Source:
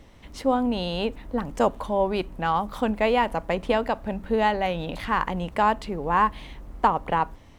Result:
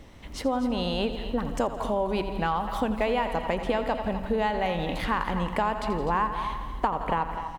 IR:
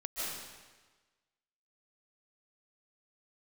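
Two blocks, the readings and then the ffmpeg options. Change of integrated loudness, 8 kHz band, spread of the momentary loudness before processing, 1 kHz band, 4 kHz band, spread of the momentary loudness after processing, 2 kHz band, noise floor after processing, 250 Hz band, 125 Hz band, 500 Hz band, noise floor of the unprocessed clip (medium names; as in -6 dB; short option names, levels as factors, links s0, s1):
-3.0 dB, no reading, 7 LU, -3.5 dB, -1.0 dB, 4 LU, -3.0 dB, -40 dBFS, -1.5 dB, 0.0 dB, -2.5 dB, -49 dBFS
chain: -filter_complex "[0:a]aecho=1:1:84|168|252|336|420|504:0.224|0.128|0.0727|0.0415|0.0236|0.0135,asplit=2[s0][s1];[1:a]atrim=start_sample=2205[s2];[s1][s2]afir=irnorm=-1:irlink=0,volume=0.112[s3];[s0][s3]amix=inputs=2:normalize=0,acompressor=threshold=0.0562:ratio=4,asplit=2[s4][s5];[s5]aecho=0:1:251:0.237[s6];[s4][s6]amix=inputs=2:normalize=0,volume=1.19"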